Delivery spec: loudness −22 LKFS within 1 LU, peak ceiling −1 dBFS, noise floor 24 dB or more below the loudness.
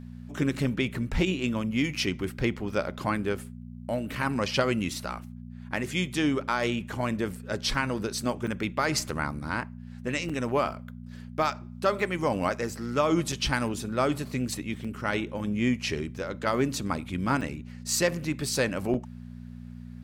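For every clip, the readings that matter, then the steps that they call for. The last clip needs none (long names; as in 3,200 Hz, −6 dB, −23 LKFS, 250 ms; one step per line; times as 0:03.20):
number of dropouts 6; longest dropout 5.6 ms; mains hum 60 Hz; hum harmonics up to 240 Hz; level of the hum −39 dBFS; integrated loudness −29.0 LKFS; sample peak −10.0 dBFS; target loudness −22.0 LKFS
→ repair the gap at 0:08.47/0:10.29/0:13.32/0:14.84/0:17.41/0:18.94, 5.6 ms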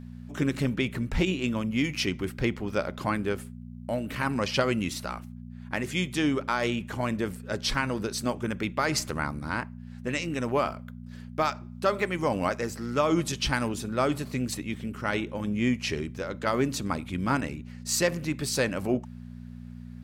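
number of dropouts 0; mains hum 60 Hz; hum harmonics up to 240 Hz; level of the hum −39 dBFS
→ hum removal 60 Hz, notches 4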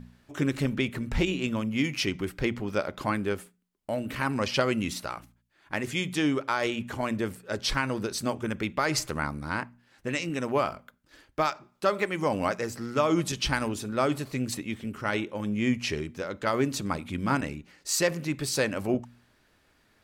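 mains hum none found; integrated loudness −29.5 LKFS; sample peak −10.5 dBFS; target loudness −22.0 LKFS
→ level +7.5 dB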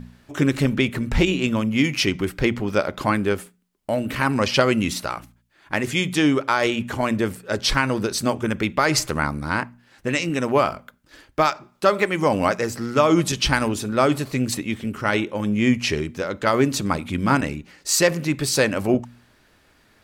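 integrated loudness −22.0 LKFS; sample peak −3.0 dBFS; background noise floor −59 dBFS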